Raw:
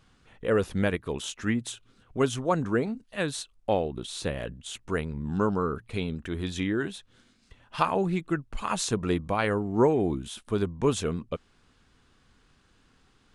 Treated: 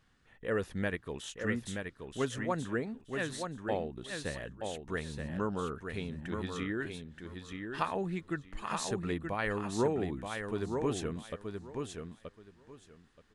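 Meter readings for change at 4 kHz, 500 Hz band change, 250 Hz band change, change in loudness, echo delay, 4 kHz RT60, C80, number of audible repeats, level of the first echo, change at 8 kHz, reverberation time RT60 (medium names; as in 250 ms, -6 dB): -7.0 dB, -7.5 dB, -7.5 dB, -7.5 dB, 927 ms, no reverb, no reverb, 2, -5.5 dB, -7.5 dB, no reverb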